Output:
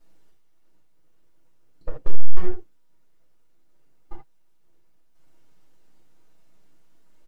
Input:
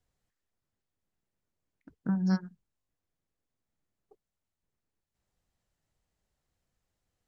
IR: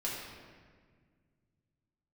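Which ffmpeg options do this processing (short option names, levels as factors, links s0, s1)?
-filter_complex "[0:a]highpass=f=66:w=0.5412,highpass=f=66:w=1.3066,lowshelf=f=90:g=-6,aeval=exprs='abs(val(0))':c=same,aecho=1:1:6.4:0.48,acompressor=threshold=0.0316:ratio=10,tiltshelf=f=930:g=5,acontrast=74,asoftclip=type=hard:threshold=0.0398[s0];[1:a]atrim=start_sample=2205,atrim=end_sample=3969[s1];[s0][s1]afir=irnorm=-1:irlink=0,volume=3.76"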